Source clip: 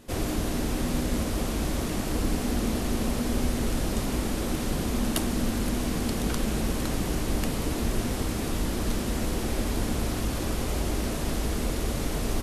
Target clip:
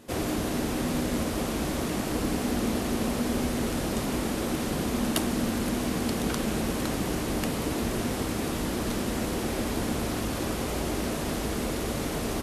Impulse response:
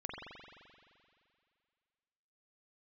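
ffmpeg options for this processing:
-filter_complex "[0:a]asplit=2[s0][s1];[s1]adynamicsmooth=sensitivity=7.5:basefreq=2500,volume=0.282[s2];[s0][s2]amix=inputs=2:normalize=0,highpass=f=140:p=1"

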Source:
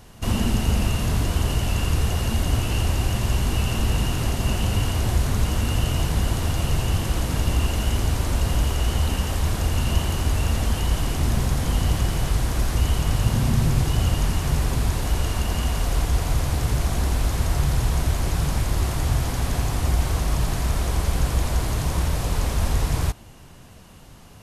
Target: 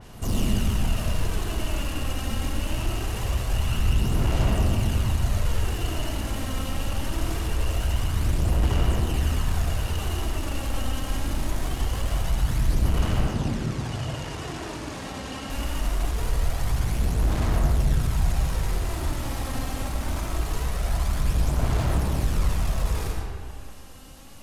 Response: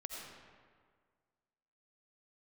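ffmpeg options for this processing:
-filter_complex "[0:a]highshelf=f=4200:g=6.5,asoftclip=type=tanh:threshold=0.0794,aphaser=in_gain=1:out_gain=1:delay=3.8:decay=0.55:speed=0.23:type=sinusoidal,asettb=1/sr,asplit=3[s0][s1][s2];[s0]atrim=end=13.204[s3];[s1]atrim=start=13.2:end=15.5,asetpts=PTS-STARTPTS,afade=t=in:d=0.004:c=qsin,afade=t=out:st=2.296:d=0.004:c=qsin,highpass=130,lowpass=7400[s4];[s2]atrim=start=15.496[s5];[s3][s4]acrossfade=d=0.004:c1=hsin:c2=qsin[s6];[s6][s5]acrossfade=d=0.004:c1=qsin:c2=hsin[s7];[1:a]atrim=start_sample=2205[s8];[s7][s8]afir=irnorm=-1:irlink=0,adynamicequalizer=threshold=0.00282:dfrequency=3300:dqfactor=0.7:tfrequency=3300:tqfactor=0.7:attack=5:release=100:ratio=0.375:range=2.5:mode=cutabove:tftype=highshelf"

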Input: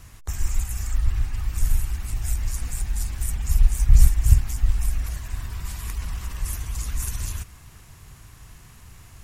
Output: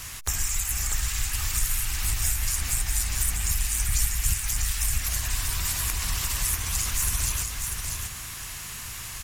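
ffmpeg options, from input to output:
-filter_complex "[0:a]asplit=2[s0][s1];[s1]asetrate=66075,aresample=44100,atempo=0.66742,volume=0.178[s2];[s0][s2]amix=inputs=2:normalize=0,tiltshelf=f=970:g=-8,acrossover=split=1100|3100[s3][s4][s5];[s3]acompressor=threshold=0.0178:ratio=4[s6];[s4]acompressor=threshold=0.00316:ratio=4[s7];[s5]acompressor=threshold=0.0158:ratio=4[s8];[s6][s7][s8]amix=inputs=3:normalize=0,asplit=2[s9][s10];[s10]aecho=0:1:643:0.562[s11];[s9][s11]amix=inputs=2:normalize=0,volume=2.66"

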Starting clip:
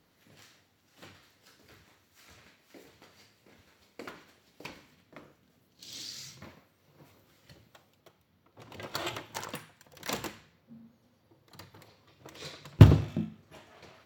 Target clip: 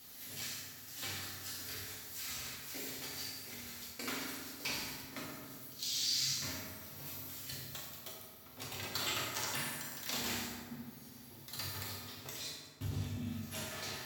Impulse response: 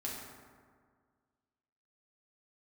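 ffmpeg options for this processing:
-filter_complex "[0:a]bass=f=250:g=4,treble=f=4000:g=2,areverse,acompressor=threshold=0.00562:ratio=6,areverse[s0];[1:a]atrim=start_sample=2205[s1];[s0][s1]afir=irnorm=-1:irlink=0,crystalizer=i=9:c=0,acrossover=split=5000[s2][s3];[s3]acompressor=threshold=0.00794:ratio=4:attack=1:release=60[s4];[s2][s4]amix=inputs=2:normalize=0,volume=1.19"

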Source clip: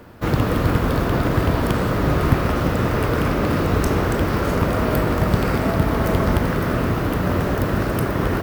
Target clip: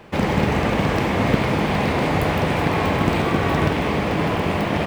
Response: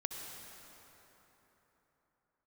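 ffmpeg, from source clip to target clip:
-filter_complex "[0:a]asplit=2[s0][s1];[1:a]atrim=start_sample=2205,lowpass=2900[s2];[s1][s2]afir=irnorm=-1:irlink=0,volume=0.708[s3];[s0][s3]amix=inputs=2:normalize=0,asetrate=76440,aresample=44100,volume=0.562"

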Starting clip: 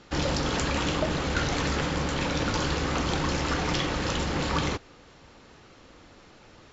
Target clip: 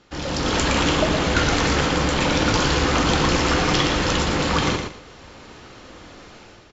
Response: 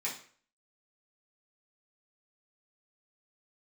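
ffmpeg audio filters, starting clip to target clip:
-filter_complex "[0:a]dynaudnorm=f=110:g=7:m=3.98,aecho=1:1:116|232|348:0.501|0.115|0.0265,asplit=2[s0][s1];[1:a]atrim=start_sample=2205,asetrate=57330,aresample=44100[s2];[s1][s2]afir=irnorm=-1:irlink=0,volume=0.211[s3];[s0][s3]amix=inputs=2:normalize=0,volume=0.668"

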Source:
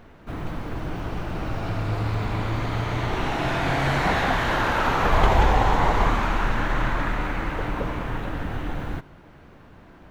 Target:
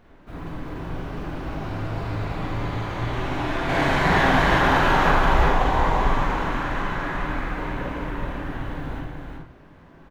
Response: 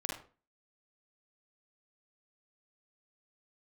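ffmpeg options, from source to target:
-filter_complex "[0:a]asettb=1/sr,asplit=3[s0][s1][s2];[s0]atrim=end=3.694[s3];[s1]atrim=start=3.69:end=5.11,asetpts=PTS-STARTPTS,afade=t=in:d=0.004:c=qsin,afade=t=out:st=1.416:d=0.004:c=qsin,acontrast=39[s4];[s2]atrim=start=5.106[s5];[s3][s4]acrossfade=d=0.004:c1=hsin:c2=qsin[s6];[s6][s5]acrossfade=d=0.004:c1=qsin:c2=hsin,aecho=1:1:375:0.631[s7];[1:a]atrim=start_sample=2205[s8];[s7][s8]afir=irnorm=-1:irlink=0,volume=0.531"

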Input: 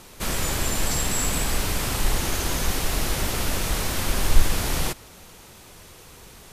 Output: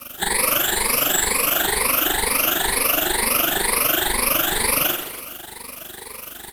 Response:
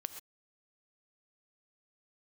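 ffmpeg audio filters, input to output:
-filter_complex "[0:a]afftfilt=real='re*pow(10,23/40*sin(2*PI*(0.91*log(max(b,1)*sr/1024/100)/log(2)-(2.1)*(pts-256)/sr)))':imag='im*pow(10,23/40*sin(2*PI*(0.91*log(max(b,1)*sr/1024/100)/log(2)-(2.1)*(pts-256)/sr)))':win_size=1024:overlap=0.75,aeval=exprs='val(0)+0.00708*(sin(2*PI*50*n/s)+sin(2*PI*2*50*n/s)/2+sin(2*PI*3*50*n/s)/3+sin(2*PI*4*50*n/s)/4+sin(2*PI*5*50*n/s)/5)':c=same,tremolo=f=24:d=0.75,acrossover=split=250 3500:gain=0.126 1 0.126[s0][s1][s2];[s0][s1][s2]amix=inputs=3:normalize=0,aeval=exprs='sgn(val(0))*max(abs(val(0))-0.00133,0)':c=same,equalizer=f=7700:t=o:w=2.8:g=8,acompressor=threshold=0.0398:ratio=6,aexciter=amount=6.8:drive=6.1:freq=9100,asplit=2[s3][s4];[s4]aecho=0:1:40|96|174.4|284.2|437.8:0.631|0.398|0.251|0.158|0.1[s5];[s3][s5]amix=inputs=2:normalize=0,volume=2.37"

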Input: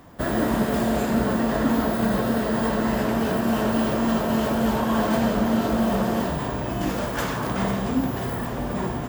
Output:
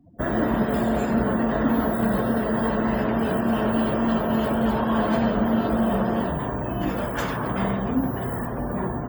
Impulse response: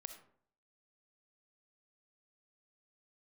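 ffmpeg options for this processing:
-af "afftdn=nr=35:nf=-39"

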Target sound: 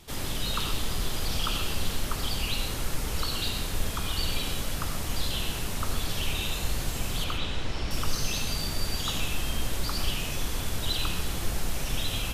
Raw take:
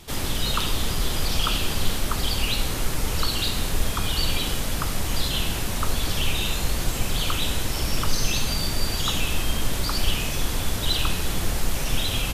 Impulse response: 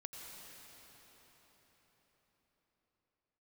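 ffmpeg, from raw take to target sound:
-filter_complex "[0:a]asettb=1/sr,asplit=3[s0][s1][s2];[s0]atrim=end=7.244[s3];[s1]atrim=start=7.24:end=7.91,asetpts=PTS-STARTPTS,afade=t=in:d=0.004:c=qsin,afade=t=out:st=0.666:d=0.004:c=qsin,lowpass=4300[s4];[s2]atrim=start=7.906[s5];[s3][s4]acrossfade=d=0.004:c1=hsin:c2=qsin[s6];[s6][s5]acrossfade=d=0.004:c1=qsin:c2=hsin[s7];[1:a]atrim=start_sample=2205,afade=t=out:st=0.2:d=0.01,atrim=end_sample=9261[s8];[s7][s8]afir=irnorm=-1:irlink=0"

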